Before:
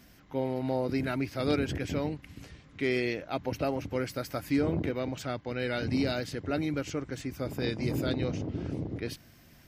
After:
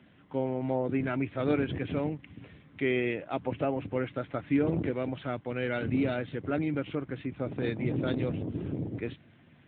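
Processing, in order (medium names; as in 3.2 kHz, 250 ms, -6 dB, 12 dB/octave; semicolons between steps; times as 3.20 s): trim +1 dB; AMR-NB 10.2 kbps 8 kHz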